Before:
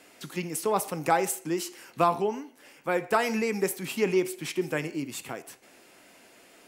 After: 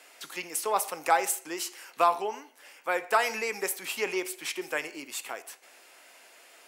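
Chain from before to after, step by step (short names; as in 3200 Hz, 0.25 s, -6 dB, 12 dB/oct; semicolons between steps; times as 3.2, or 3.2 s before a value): HPF 630 Hz 12 dB/oct; gain +2 dB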